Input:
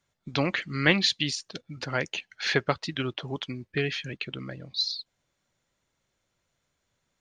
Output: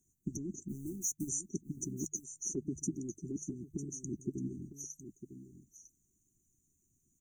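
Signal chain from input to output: 0.68–1.29 G.711 law mismatch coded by A; notches 50/100/150 Hz; in parallel at -1.5 dB: compressor, threshold -35 dBFS, peak gain reduction 18.5 dB; on the sum: brick-wall FIR band-stop 400–5800 Hz; high shelf 5000 Hz +7.5 dB; limiter -26 dBFS, peak gain reduction 10.5 dB; on a send: echo 0.952 s -11.5 dB; on the sum: harmonic-percussive split harmonic -16 dB; 2.04–2.58 dynamic EQ 230 Hz, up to -4 dB, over -58 dBFS, Q 0.77; gain +2.5 dB

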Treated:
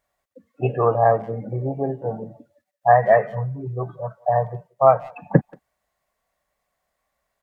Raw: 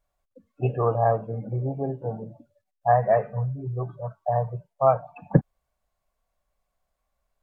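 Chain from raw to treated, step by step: HPF 180 Hz 6 dB/oct; bell 1900 Hz +9.5 dB 0.21 oct; speakerphone echo 0.18 s, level -24 dB; gain +5.5 dB

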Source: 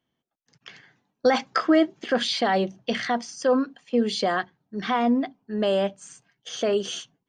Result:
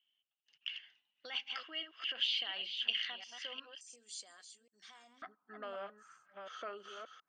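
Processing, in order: reverse delay 0.36 s, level -9 dB; compressor 2:1, threshold -34 dBFS, peak gain reduction 11 dB; band-pass 2900 Hz, Q 13, from 3.81 s 7900 Hz, from 5.22 s 1300 Hz; gain +12.5 dB

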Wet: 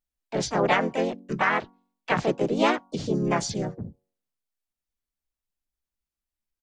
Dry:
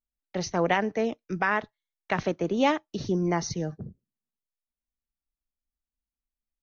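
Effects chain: harmonic-percussive split harmonic -3 dB; de-hum 236.1 Hz, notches 4; harmoniser -4 st -3 dB, +3 st -1 dB, +7 st -13 dB

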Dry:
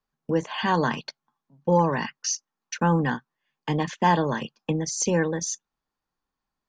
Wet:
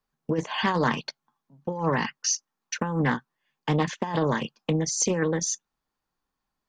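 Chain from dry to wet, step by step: negative-ratio compressor -23 dBFS, ratio -0.5; Doppler distortion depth 0.2 ms

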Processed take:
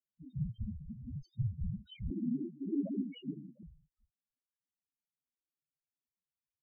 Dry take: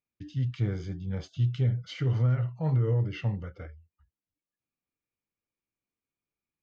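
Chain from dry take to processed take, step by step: whisperiser; loudest bins only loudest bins 2; 2.1–3.63 frequency shift +140 Hz; gain -4 dB

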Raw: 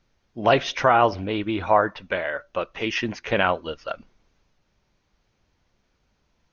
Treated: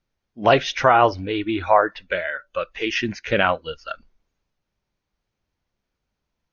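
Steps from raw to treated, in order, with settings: spectral noise reduction 13 dB; gain +2.5 dB

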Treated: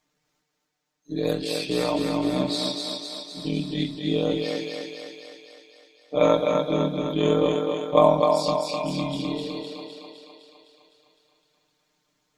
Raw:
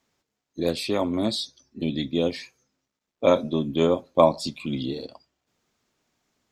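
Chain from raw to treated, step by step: granular stretch 1.9×, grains 28 ms; thinning echo 0.255 s, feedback 63%, high-pass 260 Hz, level -3 dB

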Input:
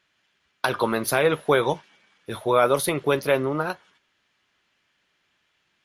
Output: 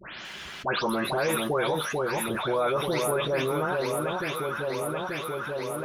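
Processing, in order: spectral delay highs late, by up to 0.249 s; echo with dull and thin repeats by turns 0.442 s, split 1300 Hz, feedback 69%, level -6.5 dB; fast leveller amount 70%; gain -8 dB

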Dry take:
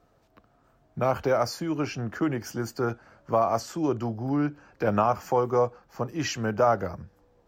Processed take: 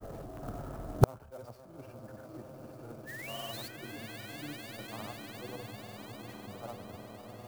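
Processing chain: tilt shelf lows +8.5 dB, about 1300 Hz; transient shaper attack -12 dB, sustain +5 dB; painted sound rise, 3.06–3.68, 1400–5000 Hz -18 dBFS; on a send: swelling echo 0.121 s, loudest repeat 8, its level -10.5 dB; on the sum: grains, pitch spread up and down by 0 st; flipped gate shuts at -22 dBFS, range -41 dB; clock jitter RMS 0.031 ms; gain +16 dB

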